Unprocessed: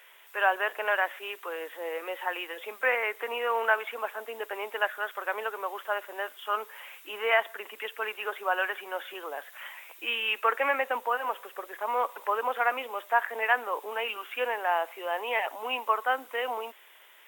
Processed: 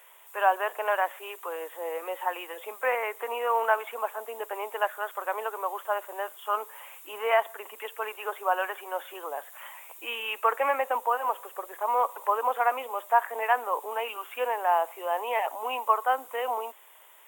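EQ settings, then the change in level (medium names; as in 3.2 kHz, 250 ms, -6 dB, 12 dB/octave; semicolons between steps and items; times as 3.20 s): high-pass 970 Hz 6 dB/octave; high-order bell 2.8 kHz -11.5 dB 2.3 oct; treble shelf 11 kHz -4.5 dB; +8.0 dB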